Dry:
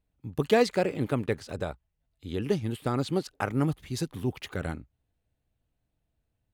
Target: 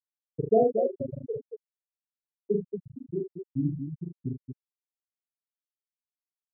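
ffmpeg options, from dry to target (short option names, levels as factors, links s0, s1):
-af "afftfilt=real='re*gte(hypot(re,im),0.447)':imag='im*gte(hypot(re,im),0.447)':win_size=1024:overlap=0.75,aecho=1:1:40.82|75.8|230.3:0.794|0.355|0.447"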